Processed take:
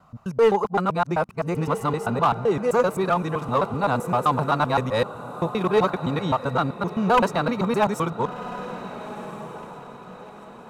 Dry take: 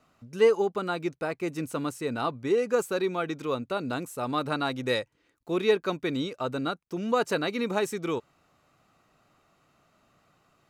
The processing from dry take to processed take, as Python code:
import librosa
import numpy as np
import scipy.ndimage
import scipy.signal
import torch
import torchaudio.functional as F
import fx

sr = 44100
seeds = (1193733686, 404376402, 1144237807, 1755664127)

p1 = fx.local_reverse(x, sr, ms=129.0)
p2 = fx.curve_eq(p1, sr, hz=(190.0, 310.0, 980.0, 2000.0), db=(0, -12, 4, -11))
p3 = 10.0 ** (-19.0 / 20.0) * (np.abs((p2 / 10.0 ** (-19.0 / 20.0) + 3.0) % 4.0 - 2.0) - 1.0)
p4 = fx.echo_diffused(p3, sr, ms=1411, feedback_pct=40, wet_db=-13.5)
p5 = np.clip(10.0 ** (29.0 / 20.0) * p4, -1.0, 1.0) / 10.0 ** (29.0 / 20.0)
p6 = p4 + (p5 * 10.0 ** (-3.5 / 20.0))
y = p6 * 10.0 ** (7.0 / 20.0)